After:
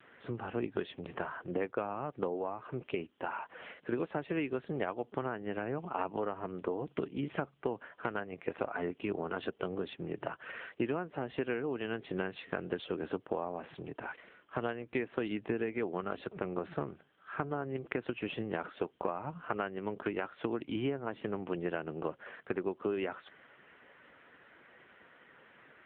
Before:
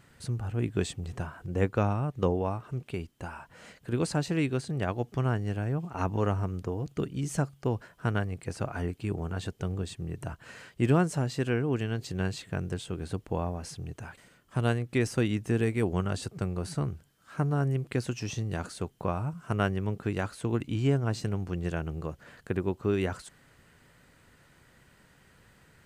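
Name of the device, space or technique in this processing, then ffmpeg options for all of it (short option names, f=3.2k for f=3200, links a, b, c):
voicemail: -af "highpass=330,lowpass=3.2k,acompressor=threshold=-37dB:ratio=12,volume=7.5dB" -ar 8000 -c:a libopencore_amrnb -b:a 6700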